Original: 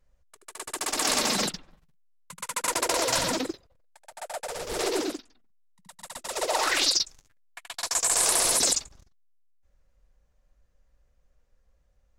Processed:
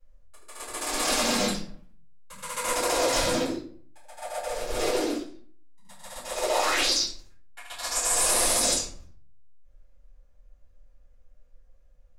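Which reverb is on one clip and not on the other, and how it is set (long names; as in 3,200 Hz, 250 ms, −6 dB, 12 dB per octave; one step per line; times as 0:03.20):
rectangular room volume 41 cubic metres, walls mixed, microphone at 2.4 metres
level −11.5 dB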